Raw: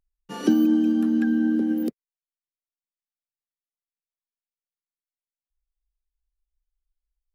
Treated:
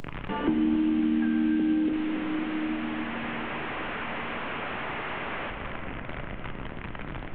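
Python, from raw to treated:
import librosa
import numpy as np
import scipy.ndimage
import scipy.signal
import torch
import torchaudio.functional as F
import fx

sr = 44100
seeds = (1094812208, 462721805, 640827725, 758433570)

y = fx.delta_mod(x, sr, bps=16000, step_db=-33.0)
y = y + 10.0 ** (-16.5 / 20.0) * np.pad(y, (int(276 * sr / 1000.0), 0))[:len(y)]
y = fx.room_shoebox(y, sr, seeds[0], volume_m3=220.0, walls='hard', distance_m=0.34)
y = fx.band_squash(y, sr, depth_pct=70)
y = F.gain(torch.from_numpy(y), -3.0).numpy()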